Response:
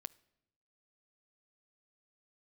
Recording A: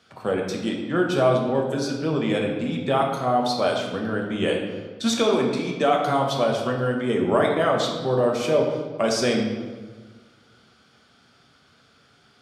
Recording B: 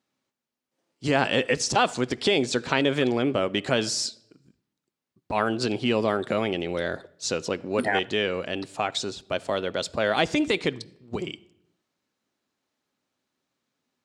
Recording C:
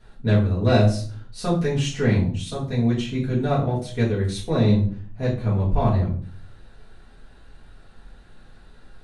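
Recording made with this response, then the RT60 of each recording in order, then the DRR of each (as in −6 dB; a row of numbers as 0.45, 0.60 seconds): B; 1.5, 0.80, 0.45 seconds; 0.0, 16.0, −7.5 decibels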